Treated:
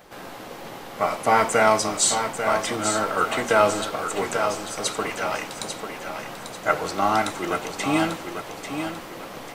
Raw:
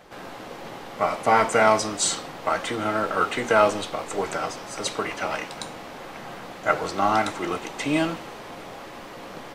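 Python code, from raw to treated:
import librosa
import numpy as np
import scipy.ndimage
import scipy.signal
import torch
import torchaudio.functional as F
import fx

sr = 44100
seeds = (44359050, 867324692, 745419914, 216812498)

p1 = fx.high_shelf(x, sr, hz=10000.0, db=11.5)
y = p1 + fx.echo_feedback(p1, sr, ms=843, feedback_pct=35, wet_db=-7.5, dry=0)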